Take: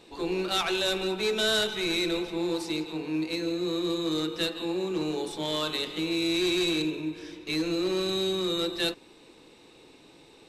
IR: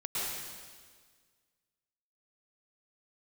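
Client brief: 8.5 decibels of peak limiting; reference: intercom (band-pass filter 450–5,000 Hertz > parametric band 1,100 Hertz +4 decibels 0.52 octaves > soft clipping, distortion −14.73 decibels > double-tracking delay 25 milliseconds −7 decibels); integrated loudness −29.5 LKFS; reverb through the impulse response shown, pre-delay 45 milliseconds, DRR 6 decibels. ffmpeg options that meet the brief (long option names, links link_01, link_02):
-filter_complex "[0:a]alimiter=level_in=2.5dB:limit=-24dB:level=0:latency=1,volume=-2.5dB,asplit=2[link_01][link_02];[1:a]atrim=start_sample=2205,adelay=45[link_03];[link_02][link_03]afir=irnorm=-1:irlink=0,volume=-12dB[link_04];[link_01][link_04]amix=inputs=2:normalize=0,highpass=450,lowpass=5000,equalizer=frequency=1100:width_type=o:width=0.52:gain=4,asoftclip=threshold=-31.5dB,asplit=2[link_05][link_06];[link_06]adelay=25,volume=-7dB[link_07];[link_05][link_07]amix=inputs=2:normalize=0,volume=7.5dB"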